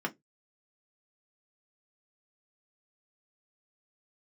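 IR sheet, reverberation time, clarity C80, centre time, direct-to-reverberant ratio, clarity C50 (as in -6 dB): 0.15 s, 35.5 dB, 6 ms, 1.0 dB, 26.0 dB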